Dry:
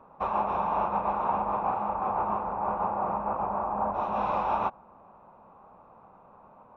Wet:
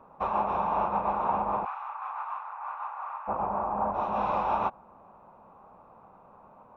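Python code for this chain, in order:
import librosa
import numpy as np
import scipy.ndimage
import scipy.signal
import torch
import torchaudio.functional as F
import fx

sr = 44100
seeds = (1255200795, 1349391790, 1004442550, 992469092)

y = fx.highpass(x, sr, hz=1100.0, slope=24, at=(1.64, 3.27), fade=0.02)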